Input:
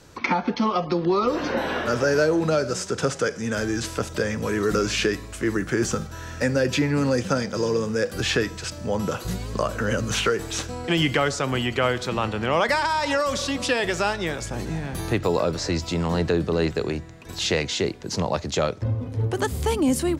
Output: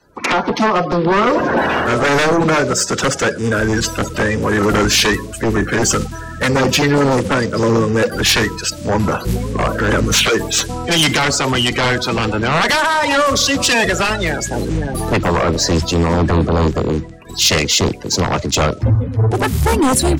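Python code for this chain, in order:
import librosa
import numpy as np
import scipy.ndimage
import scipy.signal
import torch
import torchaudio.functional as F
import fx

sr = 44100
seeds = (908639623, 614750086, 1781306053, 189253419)

y = fx.spec_quant(x, sr, step_db=30)
y = fx.fold_sine(y, sr, drive_db=12, ceiling_db=-7.5)
y = fx.band_widen(y, sr, depth_pct=70)
y = y * 10.0 ** (-2.5 / 20.0)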